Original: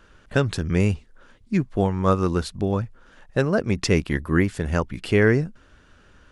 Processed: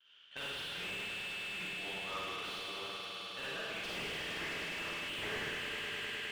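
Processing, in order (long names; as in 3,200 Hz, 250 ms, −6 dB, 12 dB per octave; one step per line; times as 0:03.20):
noise gate with hold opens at −48 dBFS
resonant band-pass 3,100 Hz, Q 10
echo that builds up and dies away 103 ms, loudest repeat 5, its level −11.5 dB
four-comb reverb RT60 1.8 s, DRR −10 dB
slew-rate limiting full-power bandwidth 21 Hz
level +2 dB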